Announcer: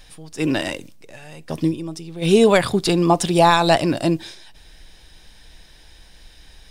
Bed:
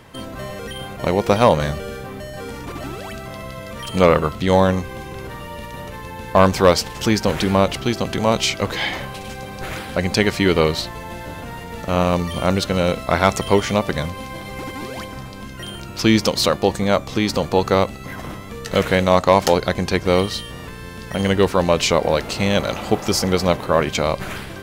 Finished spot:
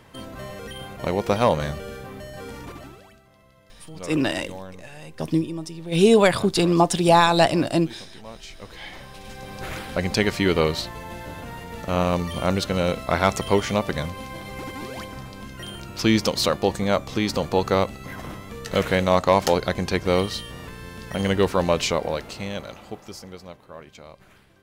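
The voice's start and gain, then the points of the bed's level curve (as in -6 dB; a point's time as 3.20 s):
3.70 s, -1.5 dB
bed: 2.65 s -5.5 dB
3.25 s -23.5 dB
8.40 s -23.5 dB
9.56 s -4 dB
21.72 s -4 dB
23.56 s -24.5 dB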